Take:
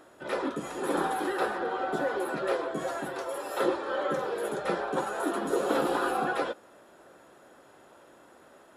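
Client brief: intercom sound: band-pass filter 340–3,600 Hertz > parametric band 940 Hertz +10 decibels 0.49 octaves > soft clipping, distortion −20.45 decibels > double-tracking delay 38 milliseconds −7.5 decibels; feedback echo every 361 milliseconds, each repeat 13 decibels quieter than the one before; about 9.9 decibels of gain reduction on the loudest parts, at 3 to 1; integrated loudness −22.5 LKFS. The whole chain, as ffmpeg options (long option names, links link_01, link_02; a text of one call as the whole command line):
ffmpeg -i in.wav -filter_complex "[0:a]acompressor=threshold=-36dB:ratio=3,highpass=340,lowpass=3600,equalizer=frequency=940:width_type=o:width=0.49:gain=10,aecho=1:1:361|722|1083:0.224|0.0493|0.0108,asoftclip=threshold=-26.5dB,asplit=2[link_01][link_02];[link_02]adelay=38,volume=-7.5dB[link_03];[link_01][link_03]amix=inputs=2:normalize=0,volume=13.5dB" out.wav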